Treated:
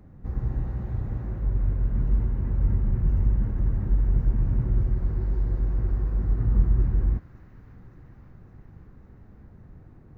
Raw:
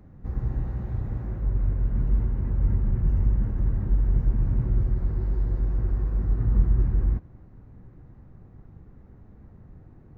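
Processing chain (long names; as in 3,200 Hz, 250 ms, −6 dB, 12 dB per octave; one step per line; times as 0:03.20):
delay with a high-pass on its return 558 ms, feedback 78%, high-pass 1,500 Hz, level −10 dB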